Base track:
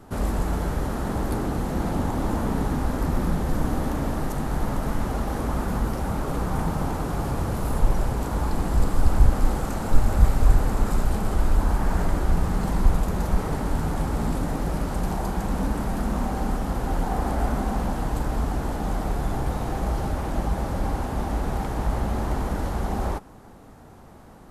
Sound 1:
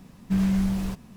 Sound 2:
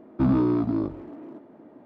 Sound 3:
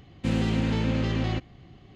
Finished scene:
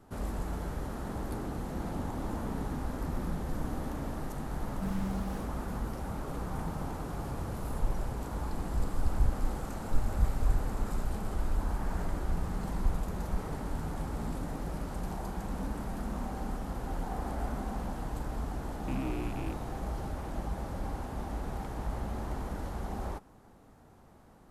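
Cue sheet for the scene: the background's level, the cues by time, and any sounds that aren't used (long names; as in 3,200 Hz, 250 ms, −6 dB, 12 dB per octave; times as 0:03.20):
base track −10.5 dB
0:04.51: mix in 1 −13.5 dB
0:18.68: mix in 2 −16 dB + loose part that buzzes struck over −29 dBFS, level −22 dBFS
not used: 3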